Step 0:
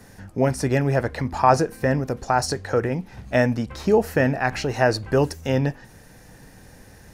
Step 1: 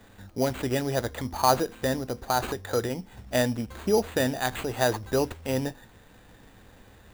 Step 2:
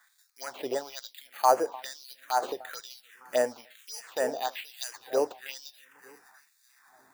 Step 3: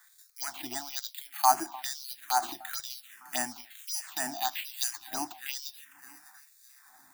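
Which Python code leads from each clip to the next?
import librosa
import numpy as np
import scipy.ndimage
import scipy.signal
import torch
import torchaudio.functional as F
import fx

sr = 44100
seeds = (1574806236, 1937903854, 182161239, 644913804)

y1 = fx.sample_hold(x, sr, seeds[0], rate_hz=5400.0, jitter_pct=0)
y1 = fx.peak_eq(y1, sr, hz=150.0, db=-13.0, octaves=0.22)
y1 = F.gain(torch.from_numpy(y1), -5.0).numpy()
y2 = fx.echo_alternate(y1, sr, ms=303, hz=1300.0, feedback_pct=67, wet_db=-13)
y2 = fx.env_phaser(y2, sr, low_hz=460.0, high_hz=3700.0, full_db=-20.0)
y2 = fx.filter_lfo_highpass(y2, sr, shape='sine', hz=1.1, low_hz=470.0, high_hz=4200.0, q=1.6)
y2 = F.gain(torch.from_numpy(y2), -2.5).numpy()
y3 = scipy.signal.sosfilt(scipy.signal.ellip(3, 1.0, 40, [340.0, 710.0], 'bandstop', fs=sr, output='sos'), y2)
y3 = fx.high_shelf(y3, sr, hz=5300.0, db=10.5)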